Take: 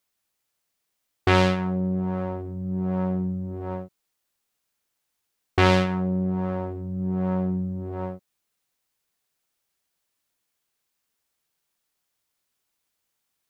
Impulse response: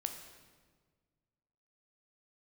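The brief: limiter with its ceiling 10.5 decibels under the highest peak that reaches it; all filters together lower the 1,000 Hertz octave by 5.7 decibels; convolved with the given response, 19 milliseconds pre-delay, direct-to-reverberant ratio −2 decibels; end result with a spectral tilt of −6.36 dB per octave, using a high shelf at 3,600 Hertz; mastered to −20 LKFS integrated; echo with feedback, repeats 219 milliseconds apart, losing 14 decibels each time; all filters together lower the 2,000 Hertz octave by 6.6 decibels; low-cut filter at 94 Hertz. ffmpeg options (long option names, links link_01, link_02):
-filter_complex "[0:a]highpass=94,equalizer=frequency=1000:width_type=o:gain=-6,equalizer=frequency=2000:width_type=o:gain=-5.5,highshelf=frequency=3600:gain=-3.5,alimiter=limit=-20dB:level=0:latency=1,aecho=1:1:219|438:0.2|0.0399,asplit=2[link_01][link_02];[1:a]atrim=start_sample=2205,adelay=19[link_03];[link_02][link_03]afir=irnorm=-1:irlink=0,volume=2dB[link_04];[link_01][link_04]amix=inputs=2:normalize=0,volume=10.5dB"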